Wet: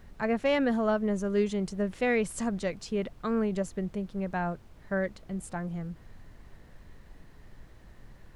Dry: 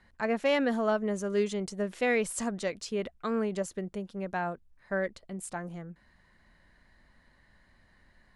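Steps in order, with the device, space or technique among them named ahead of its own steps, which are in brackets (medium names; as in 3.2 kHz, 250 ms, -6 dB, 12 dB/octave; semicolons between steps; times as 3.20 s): car interior (peaking EQ 140 Hz +9 dB 0.94 oct; treble shelf 4.6 kHz -5 dB; brown noise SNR 17 dB)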